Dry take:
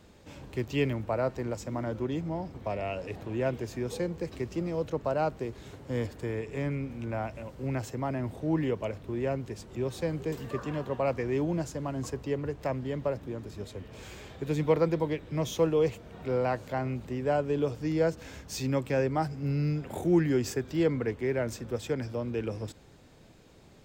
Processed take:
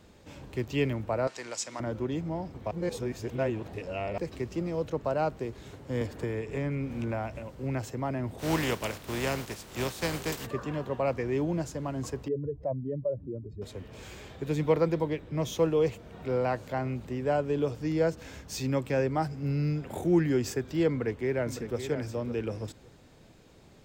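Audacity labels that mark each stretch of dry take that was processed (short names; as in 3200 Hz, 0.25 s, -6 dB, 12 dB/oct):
1.270000	1.800000	weighting filter ITU-R 468
2.710000	4.180000	reverse
6.010000	7.390000	three-band squash depth 100%
8.380000	10.450000	spectral contrast lowered exponent 0.52
12.280000	13.620000	spectral contrast raised exponent 2.2
15.040000	15.990000	mismatched tape noise reduction decoder only
20.900000	21.780000	echo throw 0.56 s, feedback 15%, level -9.5 dB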